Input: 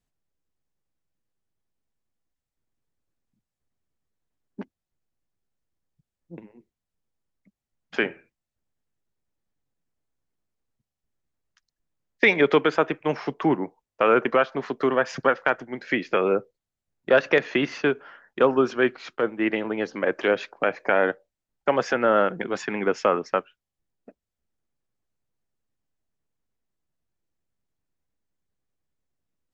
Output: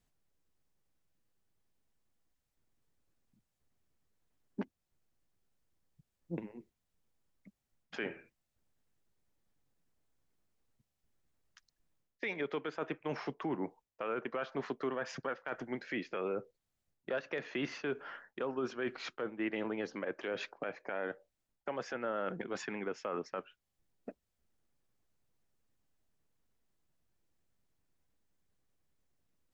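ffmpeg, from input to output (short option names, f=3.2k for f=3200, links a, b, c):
-af "areverse,acompressor=threshold=-29dB:ratio=6,areverse,alimiter=level_in=5.5dB:limit=-24dB:level=0:latency=1:release=312,volume=-5.5dB,volume=2.5dB"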